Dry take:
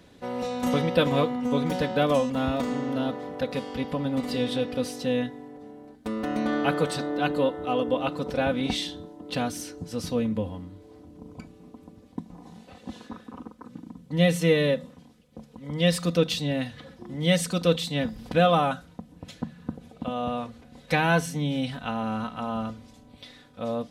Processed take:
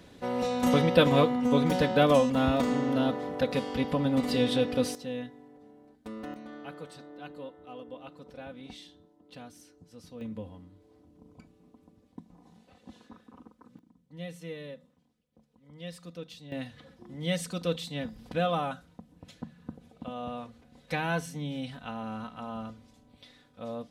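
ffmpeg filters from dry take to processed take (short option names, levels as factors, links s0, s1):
-af "asetnsamples=n=441:p=0,asendcmd='4.95 volume volume -10dB;6.34 volume volume -18.5dB;10.21 volume volume -11dB;13.79 volume volume -19.5dB;16.52 volume volume -8dB',volume=1.12"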